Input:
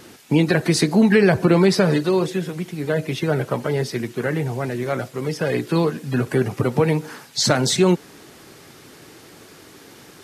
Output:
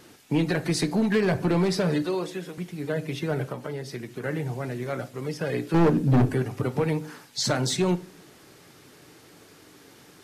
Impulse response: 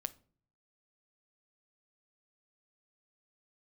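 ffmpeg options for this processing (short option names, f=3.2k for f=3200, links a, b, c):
-filter_complex "[0:a]asettb=1/sr,asplit=3[a][b][c];[a]atrim=end=2.024[d];[b]atrim=start=2.02:end=2.58,asetpts=PTS-STARTPTS,afade=t=in:d=0.004:c=qsin,afade=t=out:st=0.556:d=0.004:c=qsin,highpass=250[e];[c]atrim=start=2.576[f];[d][e]acrossfade=d=0.004:c1=hsin:c2=qsin[g];[g][f]acrossfade=d=0.004:c1=qsin:c2=hsin,asettb=1/sr,asplit=3[h][i][j];[h]atrim=end=3.494[k];[i]atrim=start=3.49:end=4.24,asetpts=PTS-STARTPTS,afade=t=in:d=0.004:c=qsin,afade=t=out:st=0.746:d=0.004:c=qsin,acompressor=threshold=-23dB:ratio=6[l];[j]atrim=start=4.236[m];[k][l]acrossfade=d=0.004:c1=hsin:c2=qsin[n];[n][m]acrossfade=d=0.004:c1=qsin:c2=hsin,asettb=1/sr,asplit=3[o][p][q];[o]atrim=end=5.744[r];[p]atrim=start=5.74:end=6.3,asetpts=PTS-STARTPTS,afade=t=in:d=0.004:c=qsin,afade=t=out:st=0.556:d=0.004:c=qsin,lowshelf=f=550:t=q:w=1.5:g=13.5[s];[q]atrim=start=6.296[t];[r][s]acrossfade=d=0.004:c1=hsin:c2=qsin[u];[u][t]acrossfade=d=0.004:c1=qsin:c2=hsin,volume=10dB,asoftclip=hard,volume=-10dB[v];[1:a]atrim=start_sample=2205[w];[v][w]afir=irnorm=-1:irlink=0,volume=-5.5dB"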